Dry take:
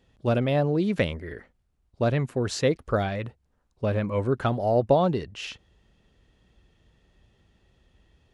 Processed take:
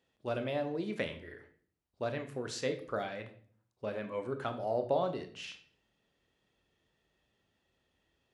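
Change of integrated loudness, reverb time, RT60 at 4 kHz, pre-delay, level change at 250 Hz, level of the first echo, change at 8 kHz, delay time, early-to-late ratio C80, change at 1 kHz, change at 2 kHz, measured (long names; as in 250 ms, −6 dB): −11.0 dB, 0.50 s, 0.45 s, 24 ms, −13.0 dB, no echo audible, −8.5 dB, no echo audible, 16.0 dB, −9.5 dB, −8.5 dB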